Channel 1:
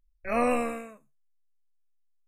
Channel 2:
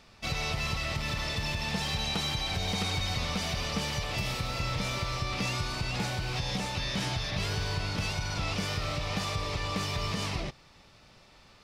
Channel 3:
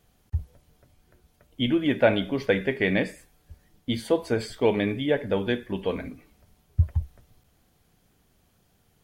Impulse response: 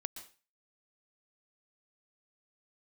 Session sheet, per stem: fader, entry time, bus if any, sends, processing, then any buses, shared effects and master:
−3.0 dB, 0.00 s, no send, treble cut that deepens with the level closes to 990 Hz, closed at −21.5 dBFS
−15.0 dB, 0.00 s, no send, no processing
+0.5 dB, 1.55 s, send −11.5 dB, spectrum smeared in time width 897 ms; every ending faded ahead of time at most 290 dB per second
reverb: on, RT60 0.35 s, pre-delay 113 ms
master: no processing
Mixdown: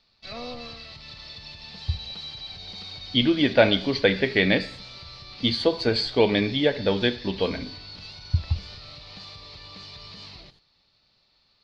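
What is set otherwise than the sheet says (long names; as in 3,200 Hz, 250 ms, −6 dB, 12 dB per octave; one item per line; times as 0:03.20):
stem 1 −3.0 dB → −12.0 dB
stem 3: missing spectrum smeared in time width 897 ms
master: extra low-pass with resonance 4,300 Hz, resonance Q 6.6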